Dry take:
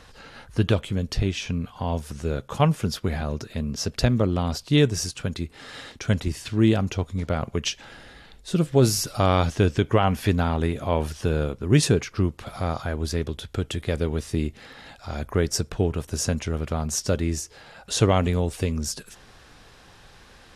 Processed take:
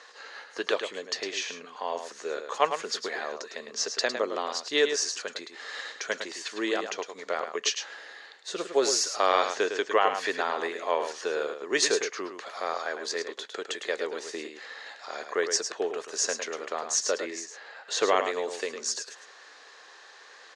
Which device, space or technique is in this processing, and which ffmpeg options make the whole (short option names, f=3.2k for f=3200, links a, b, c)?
phone speaker on a table: -filter_complex "[0:a]asettb=1/sr,asplit=3[a][b][c];[a]atrim=end=17.244[d];[b]atrim=start=17.24:end=18.16,asetpts=PTS-STARTPTS,afade=t=in:d=0.004:c=qsin,afade=t=out:st=0.916:d=0.004:c=qsin,bass=f=250:g=3,treble=f=4k:g=-7[e];[c]atrim=start=18.156[f];[d][e]acrossfade=d=0.004:c1=hsin:c2=qsin[g];[g][f]acrossfade=d=0.004:c1=qsin:c2=hsin,highpass=f=410:w=0.5412,highpass=f=410:w=1.3066,equalizer=f=440:t=q:w=4:g=3,equalizer=f=1.1k:t=q:w=4:g=5,equalizer=f=1.8k:t=q:w=4:g=9,equalizer=f=4.3k:t=q:w=4:g=6,equalizer=f=6.6k:t=q:w=4:g=7,lowpass=f=7.8k:w=0.5412,lowpass=f=7.8k:w=1.3066,aecho=1:1:106:0.398,volume=-3dB"